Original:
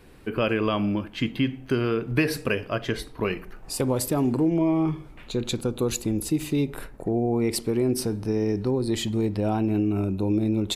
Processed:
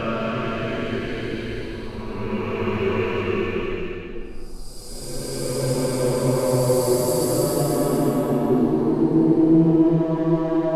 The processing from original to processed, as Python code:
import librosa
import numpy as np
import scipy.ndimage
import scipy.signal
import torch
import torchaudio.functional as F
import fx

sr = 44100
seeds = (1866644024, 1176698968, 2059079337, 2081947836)

y = fx.wiener(x, sr, points=25)
y = fx.chorus_voices(y, sr, voices=4, hz=0.55, base_ms=11, depth_ms=3.1, mix_pct=55)
y = fx.paulstretch(y, sr, seeds[0], factor=5.5, window_s=0.5, from_s=2.73)
y = F.gain(torch.from_numpy(y), 8.5).numpy()